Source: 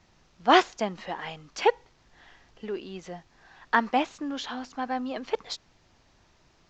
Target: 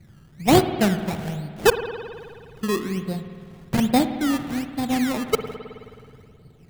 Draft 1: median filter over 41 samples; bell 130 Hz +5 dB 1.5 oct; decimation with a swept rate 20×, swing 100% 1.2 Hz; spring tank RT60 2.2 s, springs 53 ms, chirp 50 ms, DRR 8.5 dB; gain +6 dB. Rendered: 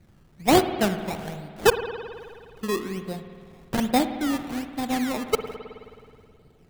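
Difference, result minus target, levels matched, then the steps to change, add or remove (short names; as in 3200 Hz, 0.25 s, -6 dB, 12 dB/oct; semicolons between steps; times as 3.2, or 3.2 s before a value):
125 Hz band -4.5 dB
change: bell 130 Hz +15 dB 1.5 oct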